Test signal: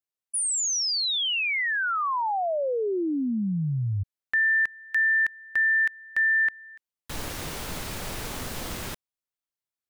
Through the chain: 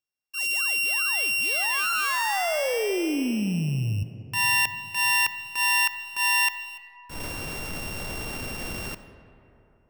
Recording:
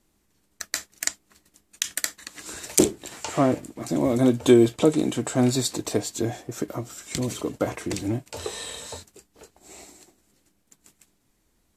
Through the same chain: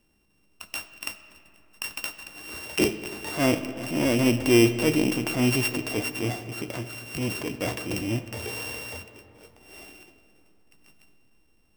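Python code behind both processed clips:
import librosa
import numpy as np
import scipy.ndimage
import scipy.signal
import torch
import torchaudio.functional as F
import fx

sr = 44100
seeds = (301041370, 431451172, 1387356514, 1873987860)

p1 = np.r_[np.sort(x[:len(x) // 16 * 16].reshape(-1, 16), axis=1).ravel(), x[len(x) // 16 * 16:]]
p2 = 10.0 ** (-15.0 / 20.0) * np.tanh(p1 / 10.0 ** (-15.0 / 20.0))
p3 = p1 + (p2 * 10.0 ** (-4.0 / 20.0))
p4 = fx.transient(p3, sr, attack_db=-8, sustain_db=2)
p5 = fx.rev_freeverb(p4, sr, rt60_s=3.2, hf_ratio=0.45, predelay_ms=15, drr_db=11.5)
y = p5 * 10.0 ** (-3.5 / 20.0)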